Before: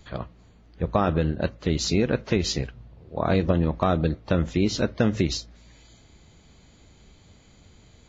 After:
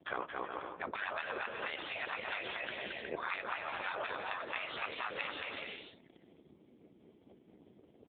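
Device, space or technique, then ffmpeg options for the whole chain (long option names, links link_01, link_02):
voicemail: -af "afftfilt=real='re*lt(hypot(re,im),0.0794)':imag='im*lt(hypot(re,im),0.0794)':win_size=1024:overlap=0.75,anlmdn=0.00398,highpass=320,lowpass=3300,equalizer=frequency=120:width=0.85:gain=-6,aecho=1:1:220|363|456|516.4|555.6:0.631|0.398|0.251|0.158|0.1,acompressor=threshold=-41dB:ratio=10,volume=10dB" -ar 8000 -c:a libopencore_amrnb -b:a 5900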